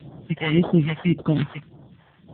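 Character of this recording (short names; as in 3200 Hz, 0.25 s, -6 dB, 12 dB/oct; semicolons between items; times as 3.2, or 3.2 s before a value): random-step tremolo; aliases and images of a low sample rate 2500 Hz, jitter 0%; phasing stages 2, 1.8 Hz, lowest notch 260–2300 Hz; AMR-NB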